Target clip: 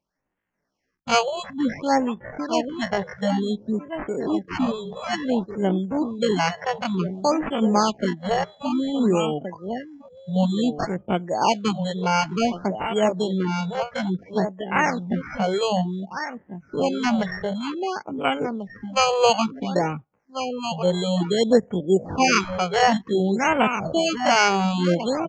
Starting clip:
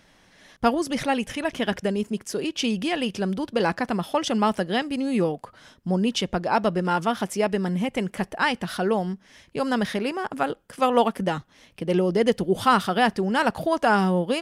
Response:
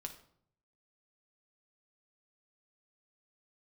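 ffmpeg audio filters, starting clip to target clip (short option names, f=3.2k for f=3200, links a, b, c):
-filter_complex "[0:a]acrossover=split=100|4700[a][b][c];[a]acompressor=threshold=-56dB:ratio=8[d];[d][b][c]amix=inputs=3:normalize=0,acrusher=samples=12:mix=1:aa=0.000001,asplit=2[e][f];[f]aecho=0:1:796:0.376[g];[e][g]amix=inputs=2:normalize=0,afftdn=nr=26:nf=-34,deesser=0.25,acrossover=split=1100[h][i];[h]aeval=exprs='val(0)*(1-0.5/2+0.5/2*cos(2*PI*5.2*n/s))':c=same[j];[i]aeval=exprs='val(0)*(1-0.5/2-0.5/2*cos(2*PI*5.2*n/s))':c=same[k];[j][k]amix=inputs=2:normalize=0,atempo=0.57,aresample=16000,aresample=44100,afftfilt=real='re*(1-between(b*sr/1024,250*pow(5100/250,0.5+0.5*sin(2*PI*0.56*pts/sr))/1.41,250*pow(5100/250,0.5+0.5*sin(2*PI*0.56*pts/sr))*1.41))':imag='im*(1-between(b*sr/1024,250*pow(5100/250,0.5+0.5*sin(2*PI*0.56*pts/sr))/1.41,250*pow(5100/250,0.5+0.5*sin(2*PI*0.56*pts/sr))*1.41))':win_size=1024:overlap=0.75,volume=4.5dB"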